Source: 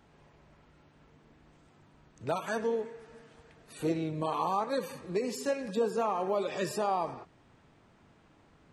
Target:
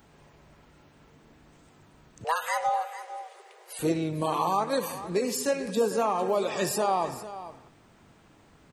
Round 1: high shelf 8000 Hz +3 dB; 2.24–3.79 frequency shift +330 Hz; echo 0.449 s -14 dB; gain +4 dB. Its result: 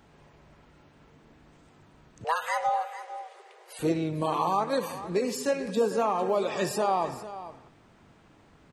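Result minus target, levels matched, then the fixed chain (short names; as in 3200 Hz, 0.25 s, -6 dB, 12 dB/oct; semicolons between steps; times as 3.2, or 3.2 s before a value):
8000 Hz band -4.5 dB
high shelf 8000 Hz +13.5 dB; 2.24–3.79 frequency shift +330 Hz; echo 0.449 s -14 dB; gain +4 dB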